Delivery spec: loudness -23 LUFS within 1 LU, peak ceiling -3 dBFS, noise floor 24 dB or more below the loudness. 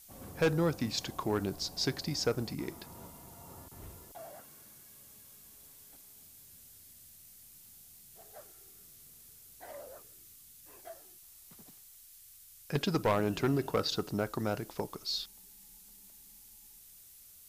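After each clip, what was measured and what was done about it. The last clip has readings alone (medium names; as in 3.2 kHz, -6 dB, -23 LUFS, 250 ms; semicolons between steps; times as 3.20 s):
clipped samples 0.3%; clipping level -22.0 dBFS; noise floor -56 dBFS; noise floor target -58 dBFS; loudness -33.5 LUFS; peak level -22.0 dBFS; loudness target -23.0 LUFS
-> clip repair -22 dBFS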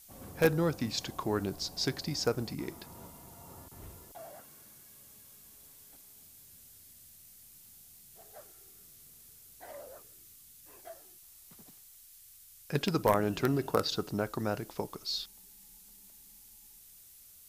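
clipped samples 0.0%; noise floor -56 dBFS; noise floor target -57 dBFS
-> noise reduction 6 dB, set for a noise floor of -56 dBFS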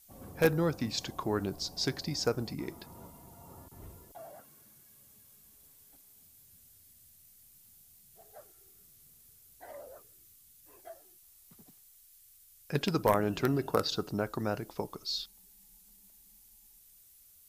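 noise floor -60 dBFS; loudness -32.5 LUFS; peak level -13.0 dBFS; loudness target -23.0 LUFS
-> trim +9.5 dB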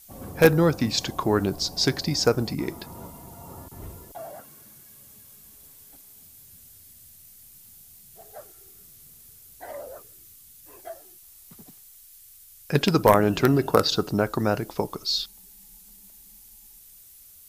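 loudness -23.0 LUFS; peak level -3.5 dBFS; noise floor -51 dBFS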